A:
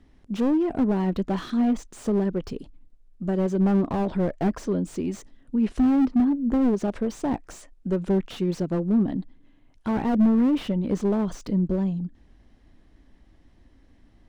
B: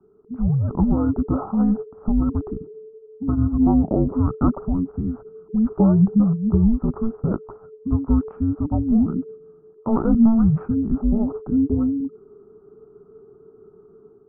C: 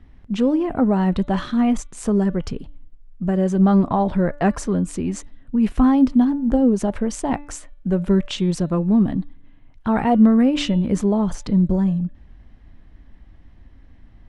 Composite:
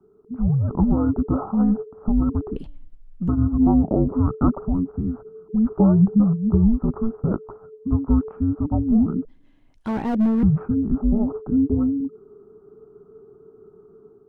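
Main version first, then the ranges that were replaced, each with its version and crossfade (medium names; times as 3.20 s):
B
2.56–3.28 s: from C
9.25–10.43 s: from A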